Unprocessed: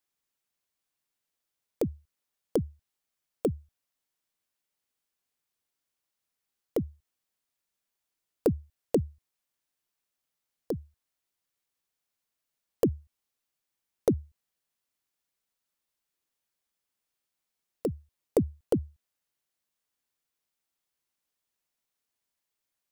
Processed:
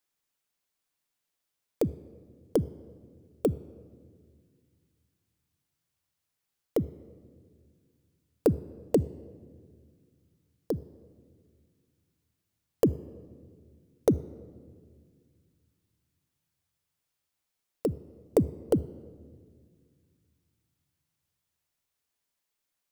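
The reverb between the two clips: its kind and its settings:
rectangular room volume 2,900 cubic metres, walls mixed, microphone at 0.33 metres
level +1.5 dB

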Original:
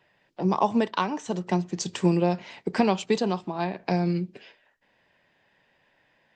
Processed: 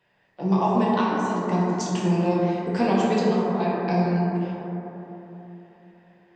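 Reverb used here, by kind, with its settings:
dense smooth reverb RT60 3.6 s, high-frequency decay 0.25×, DRR −6.5 dB
level −5 dB

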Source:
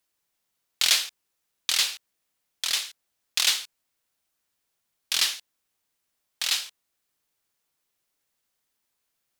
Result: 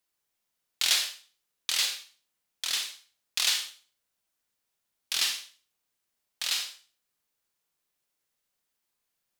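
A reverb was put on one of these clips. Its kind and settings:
four-comb reverb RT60 0.39 s, combs from 31 ms, DRR 4.5 dB
level −4.5 dB

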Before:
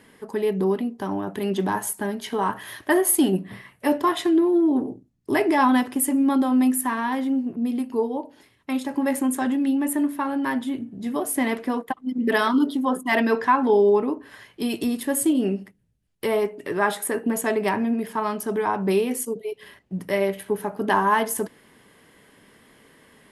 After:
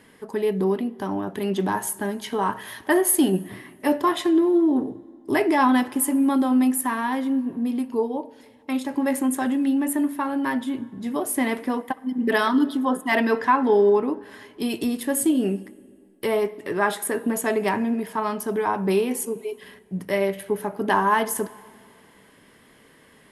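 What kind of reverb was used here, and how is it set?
dense smooth reverb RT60 2.3 s, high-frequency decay 0.7×, DRR 19 dB

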